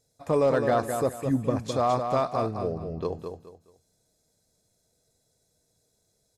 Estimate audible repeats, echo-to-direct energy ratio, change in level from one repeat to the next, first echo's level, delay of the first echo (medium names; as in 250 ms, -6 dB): 3, -6.0 dB, -11.5 dB, -6.5 dB, 211 ms